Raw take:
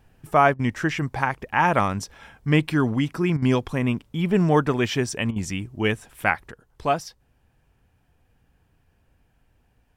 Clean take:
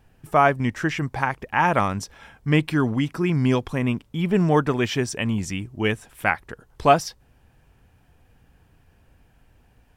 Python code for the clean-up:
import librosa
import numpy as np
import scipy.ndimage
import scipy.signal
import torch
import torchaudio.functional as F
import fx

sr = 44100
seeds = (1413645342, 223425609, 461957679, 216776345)

y = fx.fix_interpolate(x, sr, at_s=(0.54, 3.37, 5.31), length_ms=50.0)
y = fx.gain(y, sr, db=fx.steps((0.0, 0.0), (6.51, 6.5)))